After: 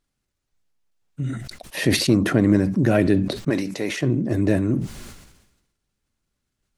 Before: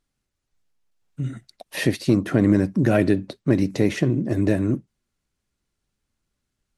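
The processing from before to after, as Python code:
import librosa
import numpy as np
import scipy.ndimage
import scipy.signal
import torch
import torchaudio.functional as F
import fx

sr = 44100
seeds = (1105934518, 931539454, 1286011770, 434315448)

y = fx.highpass(x, sr, hz=710.0, slope=6, at=(3.49, 4.02), fade=0.02)
y = fx.sustainer(y, sr, db_per_s=56.0)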